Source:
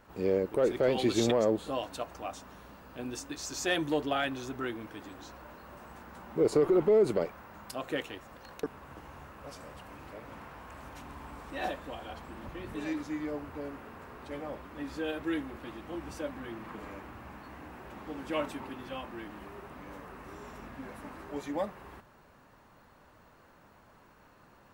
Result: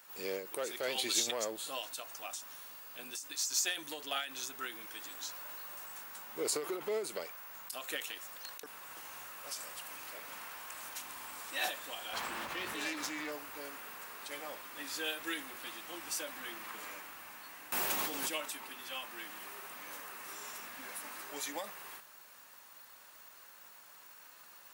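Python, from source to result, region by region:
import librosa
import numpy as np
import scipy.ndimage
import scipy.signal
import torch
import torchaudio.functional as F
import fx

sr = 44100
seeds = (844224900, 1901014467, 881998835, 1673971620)

y = fx.chain(x, sr, fx.self_delay(depth_ms=0.1),
    fx.high_shelf(hz=4600.0, db=-9.0),
    fx.env_flatten(amount_pct=70), at=(12.13, 13.32))
y = fx.chain(y, sr, fx.peak_eq(hz=1600.0, db=-6.0, octaves=1.7),
    fx.env_flatten(amount_pct=100), at=(17.72, 18.41))
y = np.diff(y, prepend=0.0)
y = fx.rider(y, sr, range_db=4, speed_s=2.0)
y = fx.end_taper(y, sr, db_per_s=110.0)
y = y * librosa.db_to_amplitude(11.5)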